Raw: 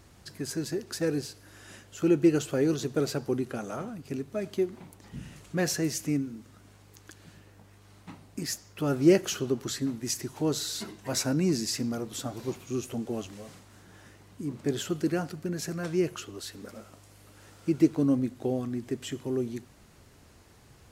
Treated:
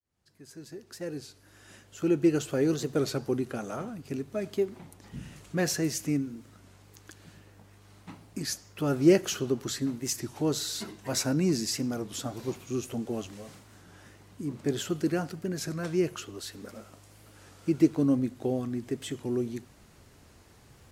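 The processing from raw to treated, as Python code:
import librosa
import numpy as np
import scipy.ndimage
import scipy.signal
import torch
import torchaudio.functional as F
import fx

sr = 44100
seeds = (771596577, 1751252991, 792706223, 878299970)

y = fx.fade_in_head(x, sr, length_s=2.73)
y = fx.record_warp(y, sr, rpm=33.33, depth_cents=100.0)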